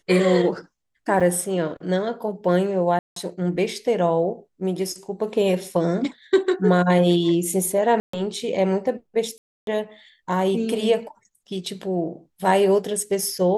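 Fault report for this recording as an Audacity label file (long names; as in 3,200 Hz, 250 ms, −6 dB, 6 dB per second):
1.200000	1.210000	drop-out 6.1 ms
2.990000	3.160000	drop-out 173 ms
8.000000	8.130000	drop-out 134 ms
9.380000	9.670000	drop-out 292 ms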